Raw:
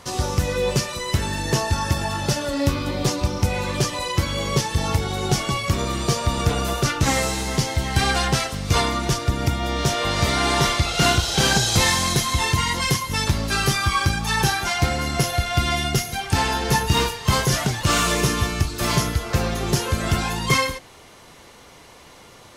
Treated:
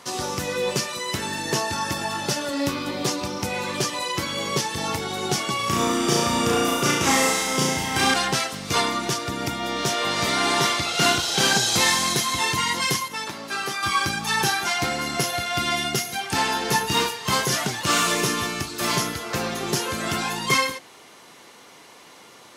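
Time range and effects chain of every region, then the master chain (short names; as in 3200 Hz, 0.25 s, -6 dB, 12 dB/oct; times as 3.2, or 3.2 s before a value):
5.56–8.14 notch 4200 Hz, Q 7.8 + flutter echo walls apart 5.9 m, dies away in 0.87 s
13.08–13.83 HPF 570 Hz 6 dB/oct + high shelf 2100 Hz -9 dB
whole clip: HPF 220 Hz 12 dB/oct; bell 560 Hz -3 dB 0.76 oct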